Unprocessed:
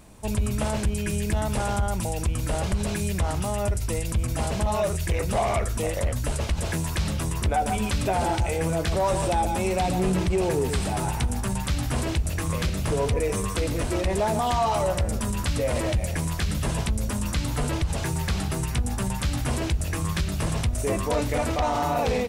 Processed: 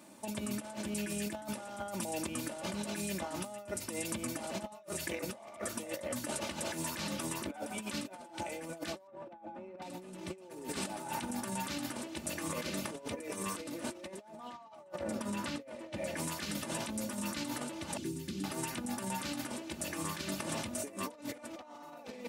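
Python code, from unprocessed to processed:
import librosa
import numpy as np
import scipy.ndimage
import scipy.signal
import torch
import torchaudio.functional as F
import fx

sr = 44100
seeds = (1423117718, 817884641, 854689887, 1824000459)

y = fx.lowpass(x, sr, hz=1600.0, slope=12, at=(9.07, 9.82))
y = fx.high_shelf(y, sr, hz=5900.0, db=-12.0, at=(14.28, 16.17))
y = fx.curve_eq(y, sr, hz=(380.0, 700.0, 3300.0), db=(0, -29, -10), at=(17.97, 18.44))
y = scipy.signal.sosfilt(scipy.signal.butter(4, 160.0, 'highpass', fs=sr, output='sos'), y)
y = y + 0.59 * np.pad(y, (int(3.4 * sr / 1000.0), 0))[:len(y)]
y = fx.over_compress(y, sr, threshold_db=-31.0, ratio=-0.5)
y = F.gain(torch.from_numpy(y), -8.5).numpy()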